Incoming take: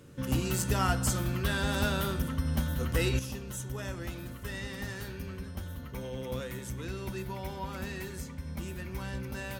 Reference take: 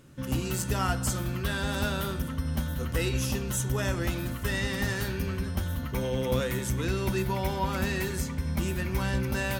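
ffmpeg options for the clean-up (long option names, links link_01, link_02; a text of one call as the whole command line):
ffmpeg -i in.wav -af "bandreject=frequency=93.5:width_type=h:width=4,bandreject=frequency=187:width_type=h:width=4,bandreject=frequency=280.5:width_type=h:width=4,bandreject=frequency=374:width_type=h:width=4,bandreject=frequency=467.5:width_type=h:width=4,bandreject=frequency=561:width_type=h:width=4,asetnsamples=nb_out_samples=441:pad=0,asendcmd='3.19 volume volume 9dB',volume=0dB" out.wav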